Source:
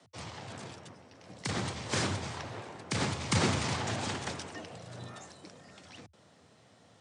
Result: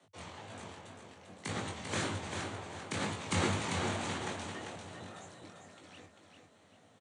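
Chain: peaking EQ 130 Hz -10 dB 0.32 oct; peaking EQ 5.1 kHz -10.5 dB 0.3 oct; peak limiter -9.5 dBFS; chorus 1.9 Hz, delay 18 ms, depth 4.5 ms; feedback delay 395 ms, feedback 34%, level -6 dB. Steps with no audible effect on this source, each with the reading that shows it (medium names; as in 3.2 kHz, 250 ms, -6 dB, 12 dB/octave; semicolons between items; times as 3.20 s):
peak limiter -9.5 dBFS: peak at its input -16.0 dBFS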